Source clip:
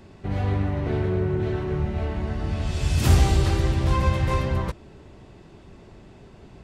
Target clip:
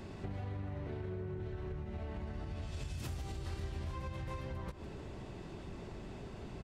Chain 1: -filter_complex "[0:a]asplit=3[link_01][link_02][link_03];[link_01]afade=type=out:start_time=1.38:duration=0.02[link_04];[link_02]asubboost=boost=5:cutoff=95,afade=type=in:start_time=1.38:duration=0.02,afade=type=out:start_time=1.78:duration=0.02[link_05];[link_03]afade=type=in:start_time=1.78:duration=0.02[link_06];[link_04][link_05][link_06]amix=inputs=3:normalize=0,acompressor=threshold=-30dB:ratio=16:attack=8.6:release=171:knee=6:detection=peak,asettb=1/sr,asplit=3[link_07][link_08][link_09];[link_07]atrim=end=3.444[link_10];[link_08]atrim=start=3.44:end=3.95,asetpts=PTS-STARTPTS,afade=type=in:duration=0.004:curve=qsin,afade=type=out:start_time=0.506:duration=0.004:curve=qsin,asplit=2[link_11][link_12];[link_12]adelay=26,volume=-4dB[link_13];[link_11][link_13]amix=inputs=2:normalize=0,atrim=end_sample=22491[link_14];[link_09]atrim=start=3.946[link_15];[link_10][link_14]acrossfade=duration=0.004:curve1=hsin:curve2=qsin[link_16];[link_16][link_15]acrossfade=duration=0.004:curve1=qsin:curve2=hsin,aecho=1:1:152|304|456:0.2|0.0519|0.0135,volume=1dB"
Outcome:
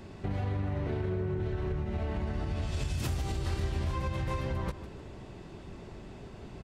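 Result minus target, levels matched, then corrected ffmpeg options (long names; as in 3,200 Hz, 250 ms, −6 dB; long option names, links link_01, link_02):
downward compressor: peak gain reduction −9 dB
-filter_complex "[0:a]asplit=3[link_01][link_02][link_03];[link_01]afade=type=out:start_time=1.38:duration=0.02[link_04];[link_02]asubboost=boost=5:cutoff=95,afade=type=in:start_time=1.38:duration=0.02,afade=type=out:start_time=1.78:duration=0.02[link_05];[link_03]afade=type=in:start_time=1.78:duration=0.02[link_06];[link_04][link_05][link_06]amix=inputs=3:normalize=0,acompressor=threshold=-39.5dB:ratio=16:attack=8.6:release=171:knee=6:detection=peak,asettb=1/sr,asplit=3[link_07][link_08][link_09];[link_07]atrim=end=3.444[link_10];[link_08]atrim=start=3.44:end=3.95,asetpts=PTS-STARTPTS,afade=type=in:duration=0.004:curve=qsin,afade=type=out:start_time=0.506:duration=0.004:curve=qsin,asplit=2[link_11][link_12];[link_12]adelay=26,volume=-4dB[link_13];[link_11][link_13]amix=inputs=2:normalize=0,atrim=end_sample=22491[link_14];[link_09]atrim=start=3.946[link_15];[link_10][link_14]acrossfade=duration=0.004:curve1=hsin:curve2=qsin[link_16];[link_16][link_15]acrossfade=duration=0.004:curve1=qsin:curve2=hsin,aecho=1:1:152|304|456:0.2|0.0519|0.0135,volume=1dB"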